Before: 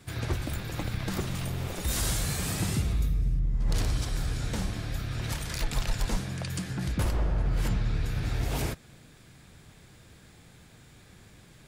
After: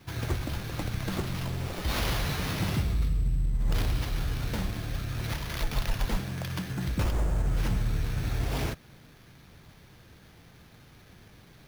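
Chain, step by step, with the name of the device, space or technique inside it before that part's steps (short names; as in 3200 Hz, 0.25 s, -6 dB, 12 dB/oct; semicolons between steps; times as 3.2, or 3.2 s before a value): early companding sampler (sample-rate reducer 8000 Hz, jitter 0%; companded quantiser 8-bit)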